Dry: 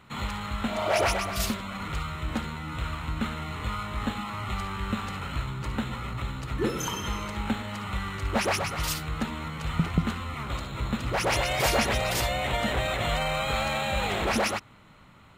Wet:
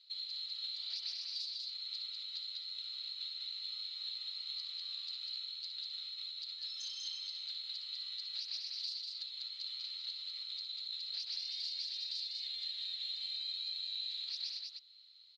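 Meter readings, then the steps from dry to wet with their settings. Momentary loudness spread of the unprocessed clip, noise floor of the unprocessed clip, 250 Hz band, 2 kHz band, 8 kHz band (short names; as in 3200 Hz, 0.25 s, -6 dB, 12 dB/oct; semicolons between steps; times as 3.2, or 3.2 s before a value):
9 LU, -53 dBFS, under -40 dB, -28.0 dB, -21.0 dB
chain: Butterworth band-pass 4300 Hz, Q 5.2; compressor, threshold -51 dBFS, peak gain reduction 15 dB; on a send: echo 0.197 s -3.5 dB; on the sum: gain +11 dB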